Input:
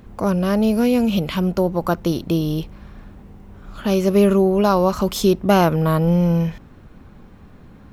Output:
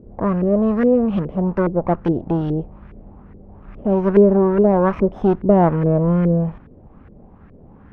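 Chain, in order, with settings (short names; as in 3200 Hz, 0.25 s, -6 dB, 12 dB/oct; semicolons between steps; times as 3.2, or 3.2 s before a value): minimum comb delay 0.35 ms; LFO low-pass saw up 2.4 Hz 410–1800 Hz; 1.39–2.53 mismatched tape noise reduction encoder only; gain -1 dB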